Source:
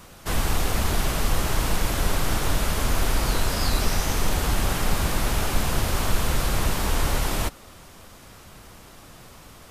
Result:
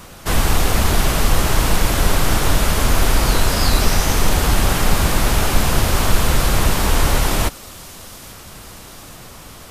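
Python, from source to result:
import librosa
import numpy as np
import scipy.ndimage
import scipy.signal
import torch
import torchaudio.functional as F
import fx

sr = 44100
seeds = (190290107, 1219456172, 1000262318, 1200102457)

y = fx.echo_wet_highpass(x, sr, ms=837, feedback_pct=67, hz=3800.0, wet_db=-16.5)
y = y * 10.0 ** (7.5 / 20.0)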